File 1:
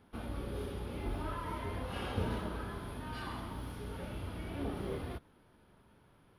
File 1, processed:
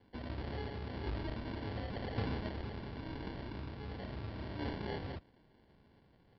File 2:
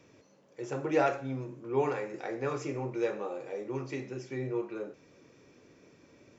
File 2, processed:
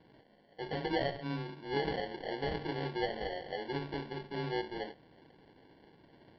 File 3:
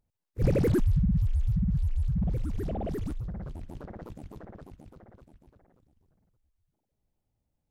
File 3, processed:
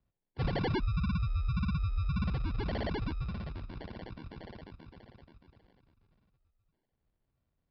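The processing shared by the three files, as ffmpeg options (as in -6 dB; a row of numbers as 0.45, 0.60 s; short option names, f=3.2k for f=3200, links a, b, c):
-af "acompressor=threshold=-27dB:ratio=6,afreqshift=14,acrusher=samples=35:mix=1:aa=0.000001,aresample=11025,aresample=44100,volume=-1.5dB"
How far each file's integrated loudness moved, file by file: -1.5, -3.0, -5.5 LU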